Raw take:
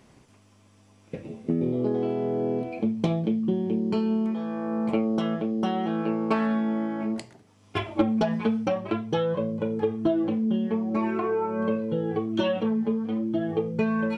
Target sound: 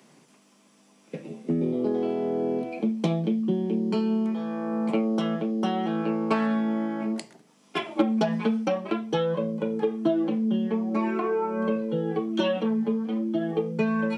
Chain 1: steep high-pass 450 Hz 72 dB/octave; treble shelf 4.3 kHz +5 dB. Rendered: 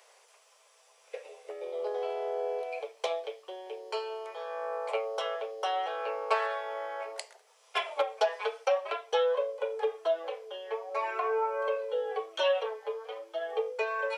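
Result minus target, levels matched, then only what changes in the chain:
500 Hz band +3.5 dB
change: steep high-pass 140 Hz 72 dB/octave

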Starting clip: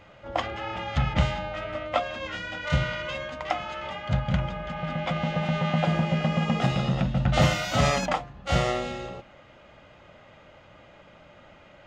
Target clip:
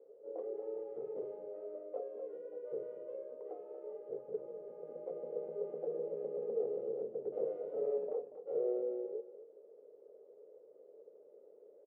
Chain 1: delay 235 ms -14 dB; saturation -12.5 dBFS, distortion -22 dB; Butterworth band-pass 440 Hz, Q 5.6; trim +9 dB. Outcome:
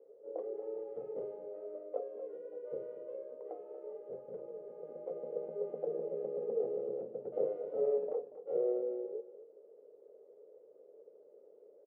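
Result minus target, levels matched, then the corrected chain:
saturation: distortion -11 dB
delay 235 ms -14 dB; saturation -22 dBFS, distortion -11 dB; Butterworth band-pass 440 Hz, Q 5.6; trim +9 dB

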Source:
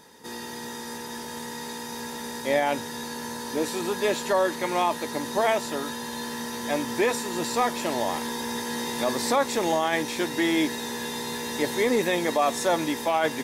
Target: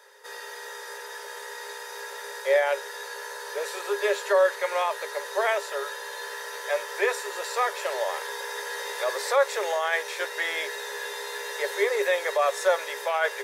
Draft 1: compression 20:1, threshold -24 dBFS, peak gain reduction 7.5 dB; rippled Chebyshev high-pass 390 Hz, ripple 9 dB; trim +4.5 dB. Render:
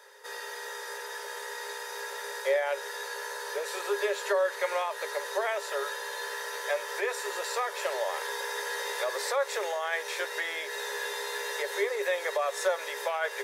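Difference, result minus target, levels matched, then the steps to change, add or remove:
compression: peak gain reduction +7.5 dB
remove: compression 20:1, threshold -24 dBFS, peak gain reduction 7.5 dB

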